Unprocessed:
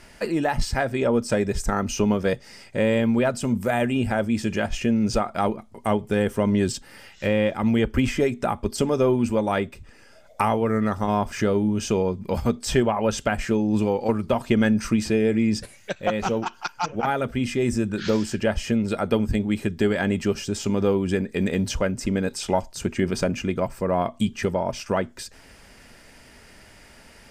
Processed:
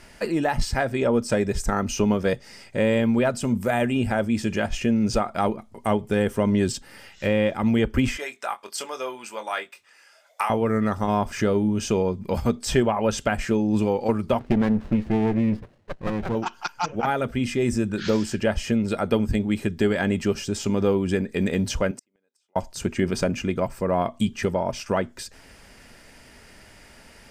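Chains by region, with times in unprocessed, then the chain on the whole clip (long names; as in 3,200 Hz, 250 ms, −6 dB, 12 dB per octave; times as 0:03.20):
0:08.17–0:10.50: high-pass filter 970 Hz + double-tracking delay 23 ms −8.5 dB
0:14.39–0:16.35: high-frequency loss of the air 490 metres + windowed peak hold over 33 samples
0:21.91–0:22.56: downward compressor 1.5 to 1, threshold −28 dBFS + high-pass filter 370 Hz + gate with flip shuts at −24 dBFS, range −41 dB
whole clip: no processing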